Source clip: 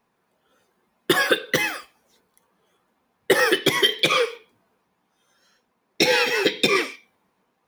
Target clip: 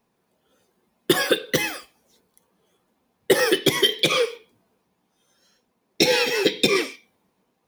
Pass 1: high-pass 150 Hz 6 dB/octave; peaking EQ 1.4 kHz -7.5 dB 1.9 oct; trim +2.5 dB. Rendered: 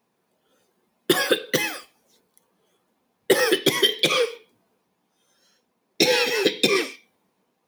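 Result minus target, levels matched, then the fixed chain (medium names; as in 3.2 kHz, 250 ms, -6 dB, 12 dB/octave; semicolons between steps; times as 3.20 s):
125 Hz band -2.5 dB
peaking EQ 1.4 kHz -7.5 dB 1.9 oct; trim +2.5 dB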